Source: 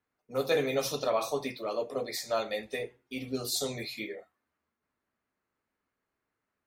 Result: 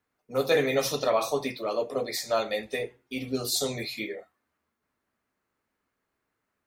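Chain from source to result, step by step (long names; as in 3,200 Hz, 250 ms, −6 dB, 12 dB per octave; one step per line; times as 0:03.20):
0:00.54–0:01.15: parametric band 1,900 Hz +8 dB 0.21 octaves
level +4 dB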